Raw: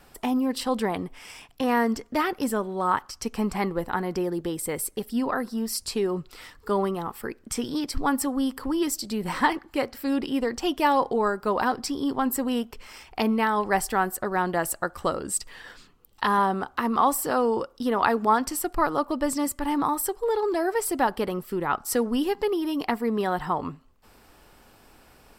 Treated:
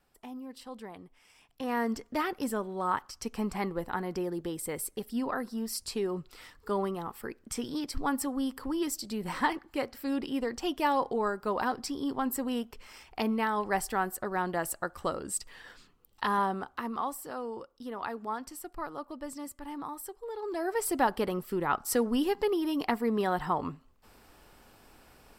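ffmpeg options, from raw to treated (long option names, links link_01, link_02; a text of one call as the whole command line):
ffmpeg -i in.wav -af "volume=5.5dB,afade=type=in:start_time=1.34:duration=0.58:silence=0.251189,afade=type=out:start_time=16.43:duration=0.73:silence=0.375837,afade=type=in:start_time=20.35:duration=0.58:silence=0.266073" out.wav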